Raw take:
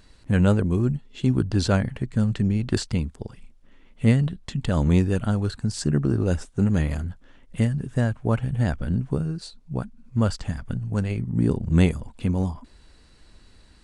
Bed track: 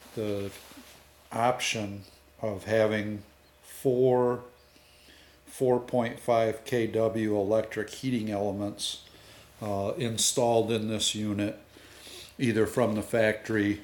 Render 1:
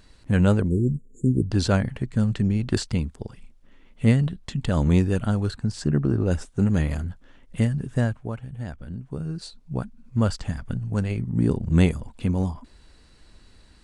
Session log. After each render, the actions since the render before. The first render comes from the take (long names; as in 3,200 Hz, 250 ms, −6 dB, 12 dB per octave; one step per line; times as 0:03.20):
0:00.68–0:01.51: linear-phase brick-wall band-stop 540–6,600 Hz
0:05.54–0:06.30: high-shelf EQ 5,800 Hz → 4,300 Hz −10 dB
0:08.04–0:09.39: duck −10.5 dB, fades 0.29 s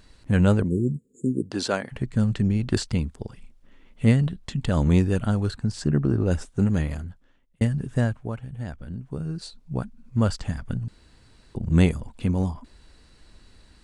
0:00.63–0:01.91: high-pass filter 100 Hz → 410 Hz
0:06.59–0:07.61: fade out linear
0:10.88–0:11.55: fill with room tone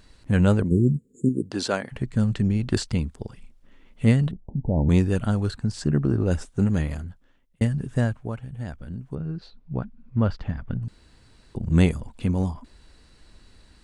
0:00.71–0:01.29: low-shelf EQ 270 Hz +7 dB
0:04.31–0:04.89: Butterworth low-pass 920 Hz 96 dB per octave
0:09.15–0:10.83: high-frequency loss of the air 270 metres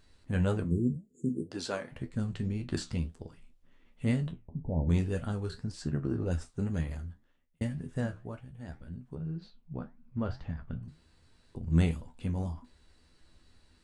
tuned comb filter 82 Hz, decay 0.16 s, harmonics all, mix 80%
flanger 1.9 Hz, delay 6.6 ms, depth 8.3 ms, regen −78%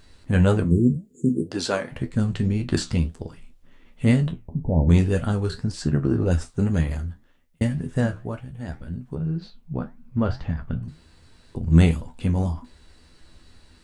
level +10.5 dB
brickwall limiter −3 dBFS, peak gain reduction 1 dB